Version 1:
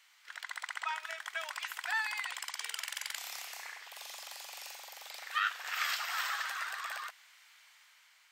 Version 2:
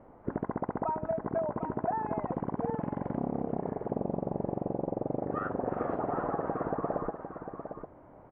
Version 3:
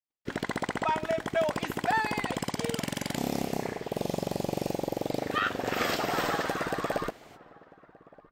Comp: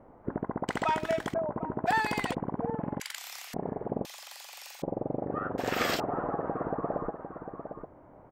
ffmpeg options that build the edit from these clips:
-filter_complex "[2:a]asplit=3[a][b][c];[0:a]asplit=2[d][e];[1:a]asplit=6[f][g][h][i][j][k];[f]atrim=end=0.682[l];[a]atrim=start=0.678:end=1.342[m];[g]atrim=start=1.338:end=1.88[n];[b]atrim=start=1.86:end=2.35[o];[h]atrim=start=2.33:end=3.002[p];[d]atrim=start=2.998:end=3.542[q];[i]atrim=start=3.538:end=4.052[r];[e]atrim=start=4.048:end=4.822[s];[j]atrim=start=4.818:end=5.582[t];[c]atrim=start=5.578:end=6.002[u];[k]atrim=start=5.998[v];[l][m]acrossfade=d=0.004:c1=hsin:c2=hsin[w];[w][n]acrossfade=d=0.004:c1=hsin:c2=hsin[x];[x][o]acrossfade=d=0.02:c1=tri:c2=tri[y];[y][p]acrossfade=d=0.02:c1=tri:c2=tri[z];[z][q]acrossfade=d=0.004:c1=hsin:c2=hsin[aa];[aa][r]acrossfade=d=0.004:c1=hsin:c2=hsin[ab];[ab][s]acrossfade=d=0.004:c1=hsin:c2=hsin[ac];[ac][t]acrossfade=d=0.004:c1=hsin:c2=hsin[ad];[ad][u]acrossfade=d=0.004:c1=hsin:c2=hsin[ae];[ae][v]acrossfade=d=0.004:c1=hsin:c2=hsin"

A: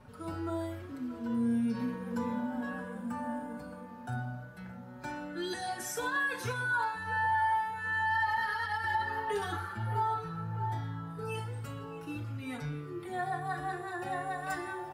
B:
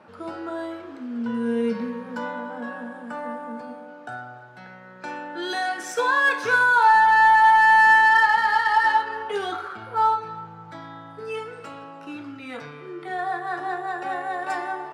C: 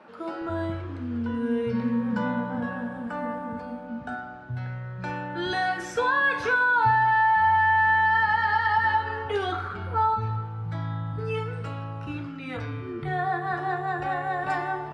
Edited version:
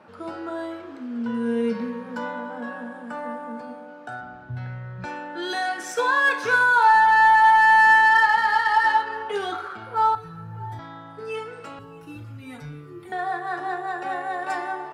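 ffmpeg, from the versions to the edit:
-filter_complex "[0:a]asplit=2[a][b];[1:a]asplit=4[c][d][e][f];[c]atrim=end=4.212[g];[2:a]atrim=start=4.208:end=5.052[h];[d]atrim=start=5.048:end=10.152[i];[a]atrim=start=10.148:end=10.792[j];[e]atrim=start=10.788:end=11.792[k];[b]atrim=start=11.788:end=13.122[l];[f]atrim=start=13.118[m];[g][h]acrossfade=d=0.004:c1=hsin:c2=hsin[n];[n][i]acrossfade=d=0.004:c1=hsin:c2=hsin[o];[o][j]acrossfade=d=0.004:c1=hsin:c2=hsin[p];[p][k]acrossfade=d=0.004:c1=hsin:c2=hsin[q];[q][l]acrossfade=d=0.004:c1=hsin:c2=hsin[r];[r][m]acrossfade=d=0.004:c1=hsin:c2=hsin"

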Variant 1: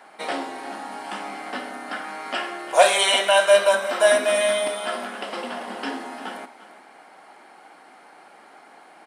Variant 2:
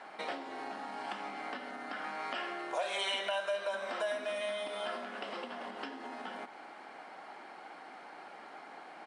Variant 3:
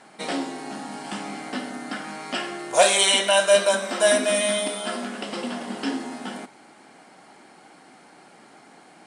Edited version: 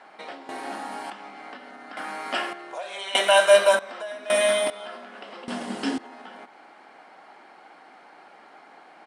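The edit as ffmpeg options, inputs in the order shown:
-filter_complex "[0:a]asplit=4[a][b][c][d];[1:a]asplit=6[e][f][g][h][i][j];[e]atrim=end=0.492[k];[a]atrim=start=0.488:end=1.102[l];[f]atrim=start=1.098:end=1.972[m];[b]atrim=start=1.968:end=2.532[n];[g]atrim=start=2.528:end=3.152[o];[c]atrim=start=3.148:end=3.792[p];[h]atrim=start=3.788:end=4.302[q];[d]atrim=start=4.298:end=4.702[r];[i]atrim=start=4.698:end=5.482[s];[2:a]atrim=start=5.478:end=5.982[t];[j]atrim=start=5.978[u];[k][l]acrossfade=d=0.004:c1=hsin:c2=hsin[v];[v][m]acrossfade=d=0.004:c1=hsin:c2=hsin[w];[w][n]acrossfade=d=0.004:c1=hsin:c2=hsin[x];[x][o]acrossfade=d=0.004:c1=hsin:c2=hsin[y];[y][p]acrossfade=d=0.004:c1=hsin:c2=hsin[z];[z][q]acrossfade=d=0.004:c1=hsin:c2=hsin[aa];[aa][r]acrossfade=d=0.004:c1=hsin:c2=hsin[ab];[ab][s]acrossfade=d=0.004:c1=hsin:c2=hsin[ac];[ac][t]acrossfade=d=0.004:c1=hsin:c2=hsin[ad];[ad][u]acrossfade=d=0.004:c1=hsin:c2=hsin"

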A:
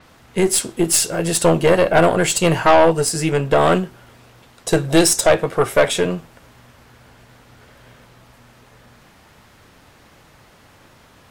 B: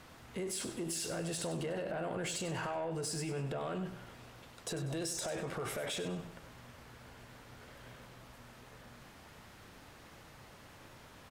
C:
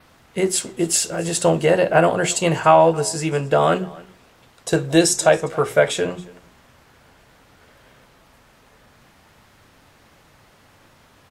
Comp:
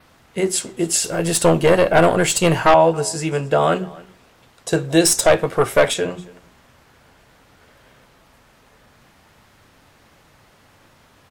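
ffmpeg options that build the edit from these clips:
-filter_complex "[0:a]asplit=2[a][b];[2:a]asplit=3[c][d][e];[c]atrim=end=1.042[f];[a]atrim=start=1.038:end=2.742[g];[d]atrim=start=2.738:end=5.052[h];[b]atrim=start=5.048:end=5.942[i];[e]atrim=start=5.938[j];[f][g]acrossfade=d=0.004:c1=hsin:c2=hsin[k];[k][h]acrossfade=d=0.004:c1=hsin:c2=hsin[l];[l][i]acrossfade=d=0.004:c1=hsin:c2=hsin[m];[m][j]acrossfade=d=0.004:c1=hsin:c2=hsin"

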